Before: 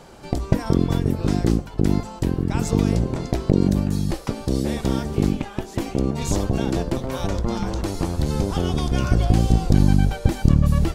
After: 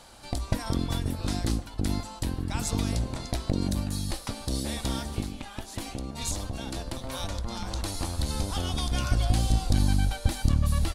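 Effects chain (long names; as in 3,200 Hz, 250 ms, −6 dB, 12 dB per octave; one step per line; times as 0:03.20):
0:05.20–0:07.71: downward compressor, threshold −21 dBFS, peak gain reduction 7.5 dB
graphic EQ with 15 bands 160 Hz −10 dB, 400 Hz −11 dB, 4,000 Hz +7 dB, 10,000 Hz +10 dB
far-end echo of a speakerphone 150 ms, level −17 dB
level −4.5 dB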